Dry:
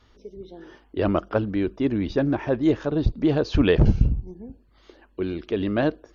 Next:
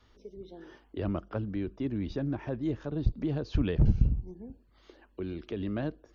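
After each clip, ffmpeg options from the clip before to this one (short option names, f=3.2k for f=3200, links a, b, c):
-filter_complex "[0:a]acrossover=split=220[a][b];[b]acompressor=threshold=-36dB:ratio=2[c];[a][c]amix=inputs=2:normalize=0,volume=-5dB"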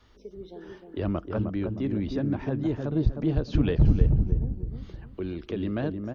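-filter_complex "[0:a]asplit=2[a][b];[b]adelay=309,lowpass=f=890:p=1,volume=-4dB,asplit=2[c][d];[d]adelay=309,lowpass=f=890:p=1,volume=0.38,asplit=2[e][f];[f]adelay=309,lowpass=f=890:p=1,volume=0.38,asplit=2[g][h];[h]adelay=309,lowpass=f=890:p=1,volume=0.38,asplit=2[i][j];[j]adelay=309,lowpass=f=890:p=1,volume=0.38[k];[a][c][e][g][i][k]amix=inputs=6:normalize=0,volume=3.5dB"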